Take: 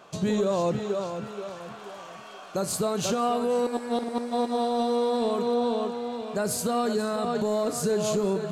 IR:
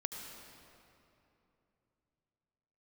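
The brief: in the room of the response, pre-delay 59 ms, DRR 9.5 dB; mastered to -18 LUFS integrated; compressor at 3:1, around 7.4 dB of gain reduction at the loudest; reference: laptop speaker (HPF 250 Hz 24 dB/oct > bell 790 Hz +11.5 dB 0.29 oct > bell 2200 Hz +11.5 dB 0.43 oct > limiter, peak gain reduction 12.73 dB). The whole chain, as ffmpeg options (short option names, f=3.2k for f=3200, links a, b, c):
-filter_complex "[0:a]acompressor=threshold=-32dB:ratio=3,asplit=2[a][b];[1:a]atrim=start_sample=2205,adelay=59[c];[b][c]afir=irnorm=-1:irlink=0,volume=-9.5dB[d];[a][d]amix=inputs=2:normalize=0,highpass=f=250:w=0.5412,highpass=f=250:w=1.3066,equalizer=f=790:t=o:w=0.29:g=11.5,equalizer=f=2.2k:t=o:w=0.43:g=11.5,volume=22dB,alimiter=limit=-10dB:level=0:latency=1"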